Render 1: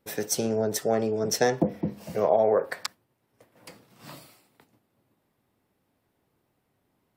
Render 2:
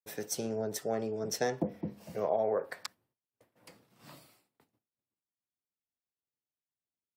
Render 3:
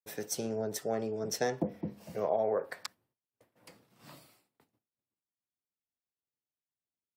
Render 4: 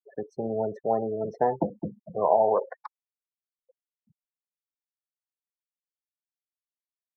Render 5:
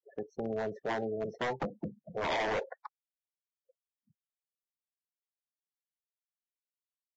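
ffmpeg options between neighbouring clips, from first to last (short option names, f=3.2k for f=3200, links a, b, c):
-af "agate=range=-33dB:threshold=-57dB:ratio=3:detection=peak,volume=-8.5dB"
-af anull
-af "afftfilt=real='re*gte(hypot(re,im),0.0178)':imag='im*gte(hypot(re,im),0.0178)':win_size=1024:overlap=0.75,lowpass=f=940:t=q:w=4.9,volume=3.5dB"
-af "aeval=exprs='0.0841*(abs(mod(val(0)/0.0841+3,4)-2)-1)':c=same,volume=-5dB" -ar 16000 -c:a libvorbis -b:a 32k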